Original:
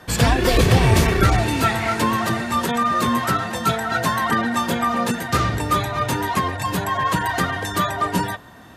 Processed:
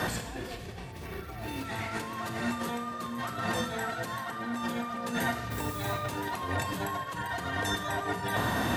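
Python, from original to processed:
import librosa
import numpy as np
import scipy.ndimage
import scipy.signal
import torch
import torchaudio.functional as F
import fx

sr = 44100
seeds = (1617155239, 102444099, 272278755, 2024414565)

p1 = scipy.signal.sosfilt(scipy.signal.butter(2, 49.0, 'highpass', fs=sr, output='sos'), x)
p2 = fx.over_compress(p1, sr, threshold_db=-36.0, ratio=-1.0)
p3 = fx.dmg_noise_colour(p2, sr, seeds[0], colour='blue', level_db=-46.0, at=(5.5, 5.93), fade=0.02)
p4 = p3 + fx.echo_feedback(p3, sr, ms=374, feedback_pct=41, wet_db=-20.5, dry=0)
p5 = fx.rev_schroeder(p4, sr, rt60_s=0.82, comb_ms=26, drr_db=6.0)
y = fx.resample_bad(p5, sr, factor=3, down='filtered', up='hold', at=(0.92, 1.65))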